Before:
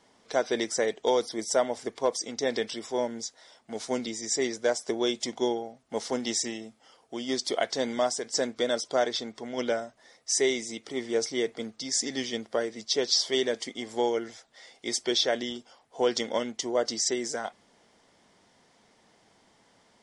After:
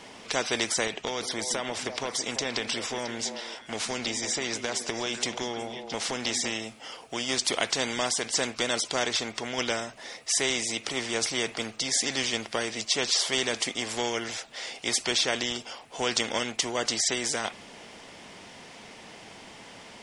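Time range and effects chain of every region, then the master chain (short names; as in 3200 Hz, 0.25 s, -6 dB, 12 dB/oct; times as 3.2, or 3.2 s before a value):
0.87–6.6 high shelf 8600 Hz -9.5 dB + compressor 4:1, threshold -29 dBFS + delay with a stepping band-pass 0.167 s, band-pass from 220 Hz, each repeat 1.4 oct, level -8 dB
whole clip: bell 2600 Hz +9 dB 0.49 oct; spectral compressor 2:1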